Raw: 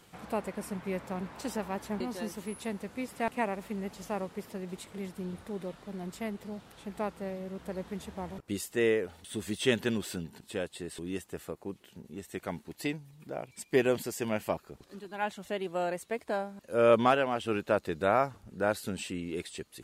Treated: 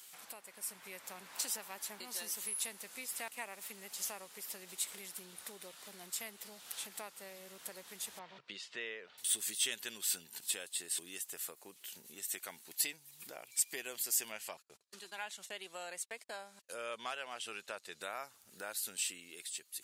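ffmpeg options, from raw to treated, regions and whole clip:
-filter_complex "[0:a]asettb=1/sr,asplit=3[a][b][c];[a]atrim=end=8.194[d];[b]atrim=start=8.19:end=9.18,asetpts=PTS-STARTPTS,afade=t=in:d=0.004:c=qsin,afade=t=out:st=0.986:d=0.004:c=qsin,highpass=f=110:w=0.5412,highpass=f=110:w=1.3066,equalizer=f=140:t=q:w=4:g=5,equalizer=f=300:t=q:w=4:g=-5,equalizer=f=910:t=q:w=4:g=4,lowpass=f=4.1k:w=0.5412,lowpass=f=4.1k:w=1.3066,bandreject=f=830:w=6.6[e];[c]atrim=start=9.176[f];[d][e]acrossfade=d=0.004:c1=hsin:c2=qsin[g];[g][f]acrossfade=d=0.004:c1=qsin:c2=hsin,asettb=1/sr,asplit=3[h][i][j];[h]atrim=end=14.324[k];[i]atrim=start=14.32:end=18.02,asetpts=PTS-STARTPTS,afade=t=in:d=0.004:c=qsin,afade=t=out:st=3.696:d=0.004:c=qsin,agate=range=-36dB:threshold=-51dB:ratio=16:release=100:detection=peak,lowpass=8.8k,equalizer=f=290:t=o:w=0.27:g=-6.5[l];[j]atrim=start=18.016[m];[k][l]acrossfade=d=0.004:c1=hsin:c2=qsin[n];[n][m]acrossfade=d=0.004:c1=qsin:c2=hsin,acompressor=threshold=-47dB:ratio=2.5,aderivative,dynaudnorm=f=140:g=11:m=7.5dB,volume=9.5dB"

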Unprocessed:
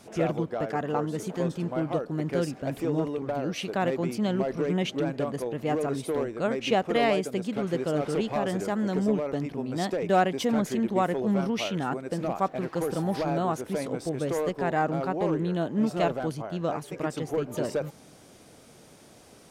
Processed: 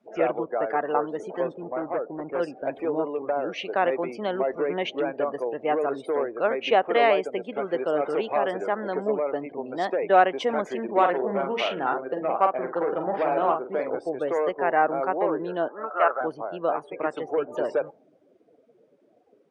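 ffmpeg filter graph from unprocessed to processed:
-filter_complex "[0:a]asettb=1/sr,asplit=3[a][b][c];[a]atrim=end=1.544[d];[b]atrim=start=1.54:end=2.4,asetpts=PTS-STARTPTS,afade=t=in:d=0.004:c=qsin,afade=t=out:st=0.856:d=0.004:c=qsin,lowpass=f=1.4k:p=1,asoftclip=type=hard:threshold=-26dB[e];[c]atrim=start=2.396[f];[d][e]acrossfade=d=0.004:c1=hsin:c2=qsin[g];[g][f]acrossfade=d=0.004:c1=qsin:c2=hsin,asettb=1/sr,asplit=3[h][i][j];[h]atrim=end=10.844[k];[i]atrim=start=10.84:end=13.99,asetpts=PTS-STARTPTS,afade=t=in:d=0.004:c=qsin,afade=t=out:st=3.146:d=0.004:c=qsin,highshelf=f=5k:g=9.5,adynamicsmooth=sensitivity=4.5:basefreq=1.2k,asplit=2[l][m];[m]adelay=45,volume=-5.5dB[n];[l][n]amix=inputs=2:normalize=0,atrim=end_sample=138915[o];[j]atrim=start=13.986[p];[k][o]acrossfade=d=0.004:c1=hsin:c2=qsin[q];[q][p]acrossfade=d=0.004:c1=qsin:c2=hsin,asettb=1/sr,asplit=3[r][s][t];[r]atrim=end=15.684[u];[s]atrim=start=15.68:end=16.21,asetpts=PTS-STARTPTS,afade=t=in:d=0.004:c=qsin,afade=t=out:st=0.526:d=0.004:c=qsin,highpass=570,lowpass=2.2k,equalizer=f=1.3k:w=3.6:g=14[v];[t]atrim=start=16.206[w];[u][v]acrossfade=d=0.004:c1=hsin:c2=qsin[x];[x][w]acrossfade=d=0.004:c1=qsin:c2=hsin,afftdn=nr=25:nf=-44,lowpass=9.1k,acrossover=split=360 3000:gain=0.0631 1 0.178[y][z][aa];[y][z][aa]amix=inputs=3:normalize=0,volume=6dB"

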